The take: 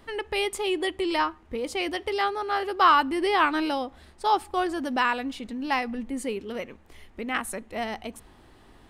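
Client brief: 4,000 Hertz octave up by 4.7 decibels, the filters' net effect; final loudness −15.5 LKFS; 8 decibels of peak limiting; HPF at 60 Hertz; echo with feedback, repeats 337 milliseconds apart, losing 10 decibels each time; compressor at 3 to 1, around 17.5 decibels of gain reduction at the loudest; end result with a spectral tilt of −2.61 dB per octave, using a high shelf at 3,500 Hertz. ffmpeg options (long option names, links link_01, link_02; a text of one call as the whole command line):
ffmpeg -i in.wav -af "highpass=60,highshelf=frequency=3500:gain=4,equalizer=frequency=4000:width_type=o:gain=4,acompressor=threshold=-38dB:ratio=3,alimiter=level_in=5dB:limit=-24dB:level=0:latency=1,volume=-5dB,aecho=1:1:337|674|1011|1348:0.316|0.101|0.0324|0.0104,volume=23.5dB" out.wav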